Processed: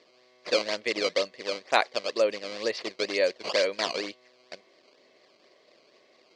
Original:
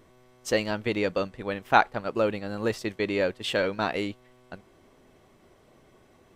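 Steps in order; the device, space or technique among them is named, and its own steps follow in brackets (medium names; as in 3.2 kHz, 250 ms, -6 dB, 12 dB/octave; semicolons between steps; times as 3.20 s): 2.24–2.75 s: distance through air 120 m; circuit-bent sampling toy (decimation with a swept rate 14×, swing 160% 2.1 Hz; cabinet simulation 500–6000 Hz, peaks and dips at 560 Hz +4 dB, 840 Hz -10 dB, 1.4 kHz -10 dB, 2.1 kHz +4 dB, 4.5 kHz +10 dB); trim +2 dB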